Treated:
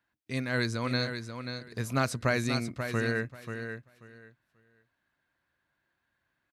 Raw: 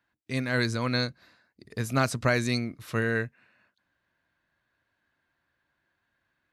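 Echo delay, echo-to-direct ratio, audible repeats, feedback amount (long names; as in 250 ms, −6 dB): 536 ms, −8.0 dB, 2, 19%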